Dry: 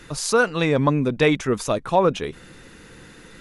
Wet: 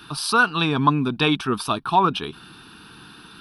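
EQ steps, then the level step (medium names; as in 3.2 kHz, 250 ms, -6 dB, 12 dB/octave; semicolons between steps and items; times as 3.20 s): high-pass 290 Hz 6 dB/octave; static phaser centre 2 kHz, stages 6; +6.5 dB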